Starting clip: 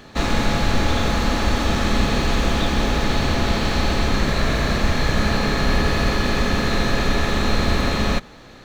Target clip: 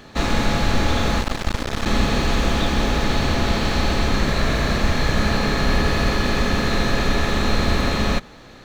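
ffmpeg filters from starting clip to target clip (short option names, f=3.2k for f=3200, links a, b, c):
-filter_complex "[0:a]asettb=1/sr,asplit=3[a][b][c];[a]atrim=end=1.214[d];[b]atrim=start=1.21:end=1.86,asetpts=PTS-STARTPTS,afade=t=in:d=0.004:c=qsin,afade=t=out:st=0.646:d=0.004:c=qsin,aeval=exprs='max(val(0),0)':c=same[e];[c]atrim=start=1.856[f];[d][e]acrossfade=d=0.004:c1=hsin:c2=qsin[g];[g][f]acrossfade=d=0.004:c1=qsin:c2=hsin"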